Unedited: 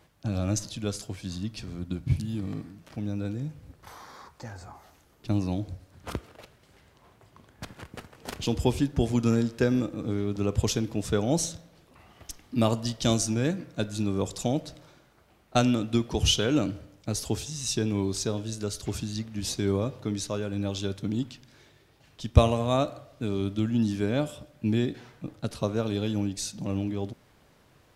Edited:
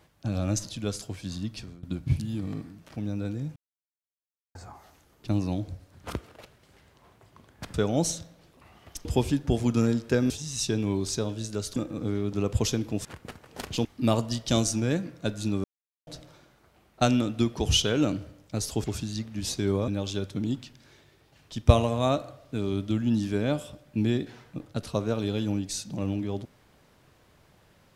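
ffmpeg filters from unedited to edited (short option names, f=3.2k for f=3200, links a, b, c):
-filter_complex "[0:a]asplit=14[a][b][c][d][e][f][g][h][i][j][k][l][m][n];[a]atrim=end=1.83,asetpts=PTS-STARTPTS,afade=t=out:st=1.57:d=0.26:silence=0.0794328[o];[b]atrim=start=1.83:end=3.56,asetpts=PTS-STARTPTS,afade=t=in:d=0.004:c=hsin:silence=0.0794328,afade=t=out:st=1.726:d=0.004:c=hsin[p];[c]atrim=start=3.56:end=4.55,asetpts=PTS-STARTPTS,volume=0[q];[d]atrim=start=4.55:end=7.742,asetpts=PTS-STARTPTS,afade=t=in:d=0.004:c=hsin[r];[e]atrim=start=11.078:end=12.392[s];[f]atrim=start=8.538:end=9.792[t];[g]atrim=start=17.378:end=18.842[u];[h]atrim=start=9.788:end=11.082[v];[i]atrim=start=7.738:end=8.542[w];[j]atrim=start=12.388:end=14.18,asetpts=PTS-STARTPTS,afade=t=out:st=1.788:d=0.004:c=hsin[x];[k]atrim=start=14.18:end=14.61,asetpts=PTS-STARTPTS,volume=0[y];[l]atrim=start=14.61:end=17.382,asetpts=PTS-STARTPTS,afade=t=in:d=0.004:c=hsin[z];[m]atrim=start=18.838:end=19.882[aa];[n]atrim=start=20.558[ab];[o][p][q][r]concat=n=4:v=0:a=1[ac];[ac][s]acrossfade=d=0.004:c1=hsin:c2=hsin[ad];[ad][t]acrossfade=d=0.004:c1=hsin:c2=hsin[ae];[ae][u]acrossfade=d=0.004:c1=hsin:c2=hsin[af];[af][v]acrossfade=d=0.004:c1=hsin:c2=hsin[ag];[ag][w]acrossfade=d=0.004:c1=hsin:c2=hsin[ah];[x][y][z]concat=n=3:v=0:a=1[ai];[ah][ai]acrossfade=d=0.004:c1=hsin:c2=hsin[aj];[aj][aa]acrossfade=d=0.004:c1=hsin:c2=hsin[ak];[ak][ab]acrossfade=d=0.004:c1=hsin:c2=hsin"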